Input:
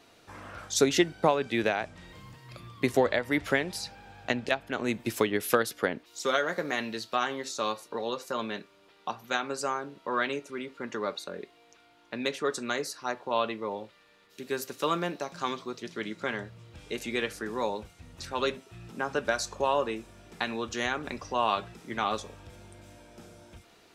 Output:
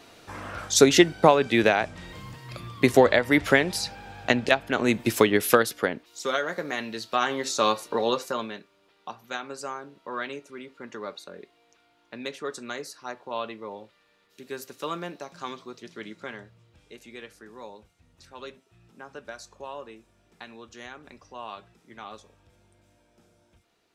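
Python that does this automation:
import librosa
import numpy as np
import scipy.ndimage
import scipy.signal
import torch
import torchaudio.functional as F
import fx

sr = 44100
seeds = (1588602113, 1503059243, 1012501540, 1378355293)

y = fx.gain(x, sr, db=fx.line((5.41, 7.0), (6.11, 0.0), (6.87, 0.0), (7.55, 8.0), (8.16, 8.0), (8.59, -4.0), (16.09, -4.0), (16.99, -12.0)))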